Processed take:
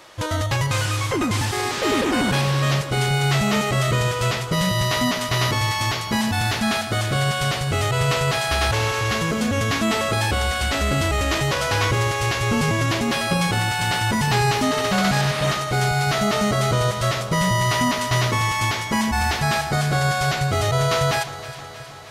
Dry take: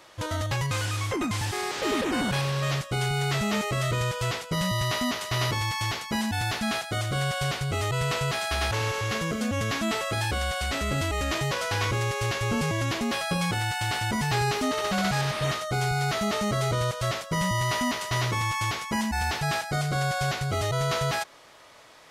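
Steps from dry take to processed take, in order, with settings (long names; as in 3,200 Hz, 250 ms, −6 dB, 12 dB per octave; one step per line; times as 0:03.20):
delay that swaps between a low-pass and a high-pass 158 ms, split 1,400 Hz, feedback 81%, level −12 dB
level +6 dB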